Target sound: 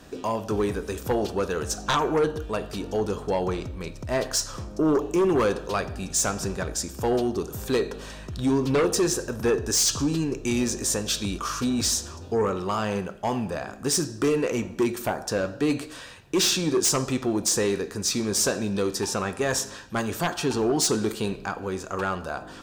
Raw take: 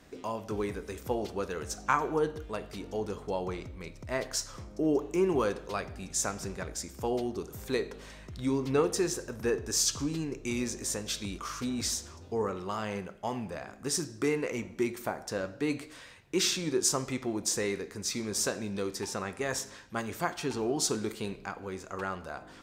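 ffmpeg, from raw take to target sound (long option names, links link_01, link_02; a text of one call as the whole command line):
ffmpeg -i in.wav -af "bandreject=frequency=2100:width=5.3,aeval=exprs='0.282*sin(PI/2*3.55*val(0)/0.282)':channel_layout=same,volume=-6dB" out.wav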